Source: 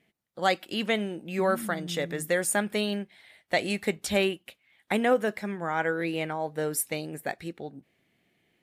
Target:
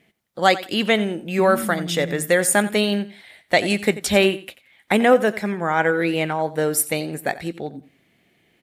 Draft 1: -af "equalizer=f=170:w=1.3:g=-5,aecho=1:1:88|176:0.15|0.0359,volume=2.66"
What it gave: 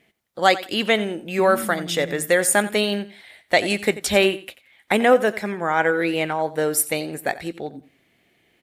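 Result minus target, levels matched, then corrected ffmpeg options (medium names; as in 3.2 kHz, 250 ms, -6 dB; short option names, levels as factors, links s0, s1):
125 Hz band -4.0 dB
-af "aecho=1:1:88|176:0.15|0.0359,volume=2.66"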